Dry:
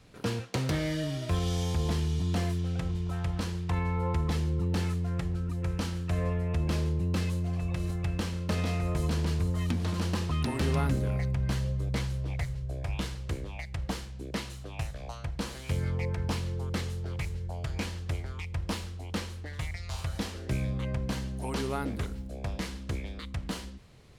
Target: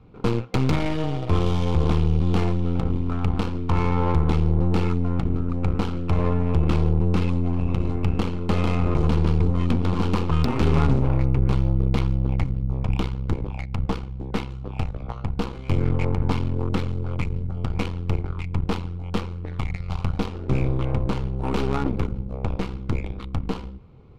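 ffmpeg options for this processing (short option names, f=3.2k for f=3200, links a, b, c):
-af "aeval=exprs='0.126*(cos(1*acos(clip(val(0)/0.126,-1,1)))-cos(1*PI/2))+0.0224*(cos(4*acos(clip(val(0)/0.126,-1,1)))-cos(4*PI/2))+0.0112*(cos(8*acos(clip(val(0)/0.126,-1,1)))-cos(8*PI/2))':c=same,superequalizer=8b=0.501:11b=0.355,adynamicsmooth=sensitivity=3:basefreq=1.4k,volume=7.5dB"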